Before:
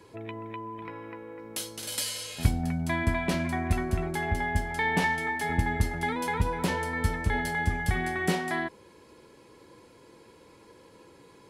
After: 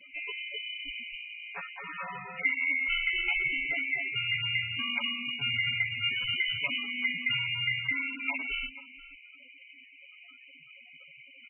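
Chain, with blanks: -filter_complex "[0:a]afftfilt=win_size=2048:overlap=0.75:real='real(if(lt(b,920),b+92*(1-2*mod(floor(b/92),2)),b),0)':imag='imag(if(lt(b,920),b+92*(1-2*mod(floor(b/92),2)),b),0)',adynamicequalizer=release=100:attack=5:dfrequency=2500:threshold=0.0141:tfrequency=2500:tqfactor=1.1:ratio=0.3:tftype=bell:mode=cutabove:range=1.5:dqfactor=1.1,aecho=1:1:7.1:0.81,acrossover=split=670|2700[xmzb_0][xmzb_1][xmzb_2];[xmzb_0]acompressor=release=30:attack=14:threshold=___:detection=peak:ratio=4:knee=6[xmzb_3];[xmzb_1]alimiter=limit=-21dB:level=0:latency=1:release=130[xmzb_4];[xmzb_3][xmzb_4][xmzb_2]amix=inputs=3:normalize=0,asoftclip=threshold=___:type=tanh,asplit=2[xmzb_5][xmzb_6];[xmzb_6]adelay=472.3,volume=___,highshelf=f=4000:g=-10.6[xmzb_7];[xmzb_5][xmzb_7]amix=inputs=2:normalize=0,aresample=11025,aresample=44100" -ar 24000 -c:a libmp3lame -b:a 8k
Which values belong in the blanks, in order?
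-47dB, -16dB, -15dB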